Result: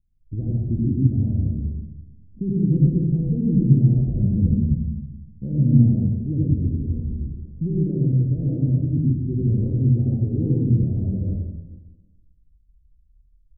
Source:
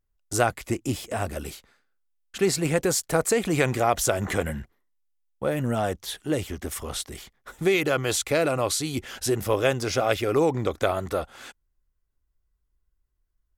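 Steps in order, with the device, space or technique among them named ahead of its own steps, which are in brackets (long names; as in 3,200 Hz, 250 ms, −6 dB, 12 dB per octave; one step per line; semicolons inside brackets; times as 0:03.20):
club heard from the street (brickwall limiter −16 dBFS, peak gain reduction 8.5 dB; low-pass filter 220 Hz 24 dB per octave; convolution reverb RT60 1.1 s, pre-delay 72 ms, DRR −4.5 dB)
level +8 dB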